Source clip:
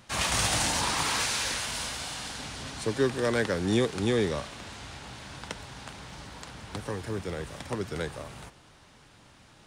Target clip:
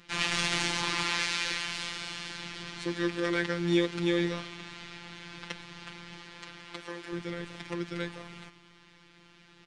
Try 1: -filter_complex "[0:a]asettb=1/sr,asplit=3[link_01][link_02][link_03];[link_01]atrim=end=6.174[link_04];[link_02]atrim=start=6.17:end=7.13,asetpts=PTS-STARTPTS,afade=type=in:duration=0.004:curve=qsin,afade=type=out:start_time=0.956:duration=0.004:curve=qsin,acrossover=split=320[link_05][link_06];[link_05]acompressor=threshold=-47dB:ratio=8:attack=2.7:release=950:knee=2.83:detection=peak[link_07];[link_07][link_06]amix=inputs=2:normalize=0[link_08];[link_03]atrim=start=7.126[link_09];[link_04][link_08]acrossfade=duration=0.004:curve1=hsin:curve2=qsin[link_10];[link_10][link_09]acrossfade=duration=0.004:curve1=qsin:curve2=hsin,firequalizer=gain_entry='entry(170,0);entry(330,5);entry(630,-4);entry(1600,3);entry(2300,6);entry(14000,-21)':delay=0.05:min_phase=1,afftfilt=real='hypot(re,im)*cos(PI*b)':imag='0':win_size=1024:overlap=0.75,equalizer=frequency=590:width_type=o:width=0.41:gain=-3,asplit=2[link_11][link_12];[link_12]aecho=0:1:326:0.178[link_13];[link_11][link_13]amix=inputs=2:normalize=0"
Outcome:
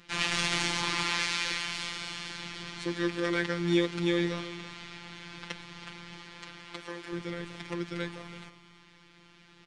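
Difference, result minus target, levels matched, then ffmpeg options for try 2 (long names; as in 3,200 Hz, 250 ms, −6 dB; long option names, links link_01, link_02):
echo-to-direct +7.5 dB
-filter_complex "[0:a]asettb=1/sr,asplit=3[link_01][link_02][link_03];[link_01]atrim=end=6.174[link_04];[link_02]atrim=start=6.17:end=7.13,asetpts=PTS-STARTPTS,afade=type=in:duration=0.004:curve=qsin,afade=type=out:start_time=0.956:duration=0.004:curve=qsin,acrossover=split=320[link_05][link_06];[link_05]acompressor=threshold=-47dB:ratio=8:attack=2.7:release=950:knee=2.83:detection=peak[link_07];[link_07][link_06]amix=inputs=2:normalize=0[link_08];[link_03]atrim=start=7.126[link_09];[link_04][link_08]acrossfade=duration=0.004:curve1=hsin:curve2=qsin[link_10];[link_10][link_09]acrossfade=duration=0.004:curve1=qsin:curve2=hsin,firequalizer=gain_entry='entry(170,0);entry(330,5);entry(630,-4);entry(1600,3);entry(2300,6);entry(14000,-21)':delay=0.05:min_phase=1,afftfilt=real='hypot(re,im)*cos(PI*b)':imag='0':win_size=1024:overlap=0.75,equalizer=frequency=590:width_type=o:width=0.41:gain=-3,asplit=2[link_11][link_12];[link_12]aecho=0:1:326:0.075[link_13];[link_11][link_13]amix=inputs=2:normalize=0"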